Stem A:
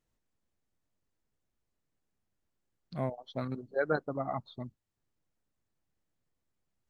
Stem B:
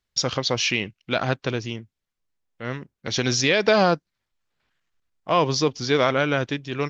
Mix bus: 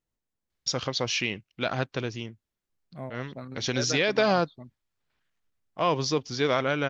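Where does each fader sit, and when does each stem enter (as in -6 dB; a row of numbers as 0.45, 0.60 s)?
-4.5, -5.0 dB; 0.00, 0.50 s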